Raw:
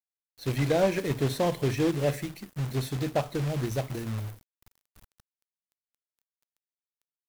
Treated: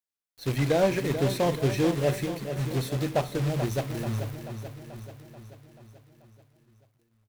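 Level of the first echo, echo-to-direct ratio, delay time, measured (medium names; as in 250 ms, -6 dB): -9.5 dB, -7.5 dB, 435 ms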